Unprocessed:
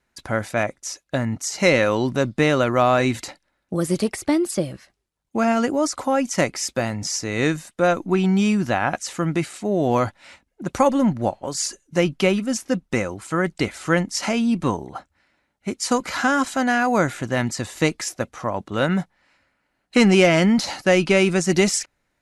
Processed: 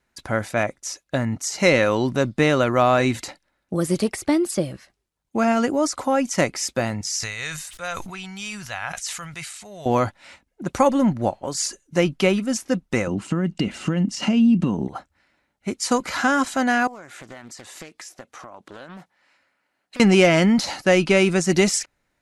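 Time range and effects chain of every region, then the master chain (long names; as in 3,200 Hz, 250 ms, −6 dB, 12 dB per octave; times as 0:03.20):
0:07.01–0:09.86: guitar amp tone stack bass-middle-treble 10-0-10 + level that may fall only so fast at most 40 dB per second
0:13.07–0:14.88: low-pass filter 8,000 Hz + downward compressor 10 to 1, threshold −27 dBFS + hollow resonant body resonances 200/2,800 Hz, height 16 dB, ringing for 25 ms
0:16.87–0:20.00: high-pass filter 400 Hz 6 dB per octave + downward compressor 8 to 1, threshold −36 dBFS + highs frequency-modulated by the lows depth 0.54 ms
whole clip: no processing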